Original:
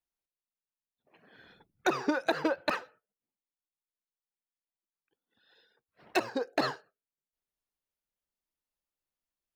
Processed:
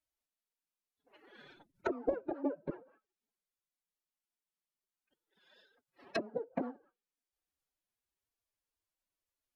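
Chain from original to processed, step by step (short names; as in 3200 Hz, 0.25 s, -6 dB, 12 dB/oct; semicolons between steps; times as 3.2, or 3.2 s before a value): treble ducked by the level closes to 340 Hz, closed at -31 dBFS; formant-preserving pitch shift +10.5 st; gain +1 dB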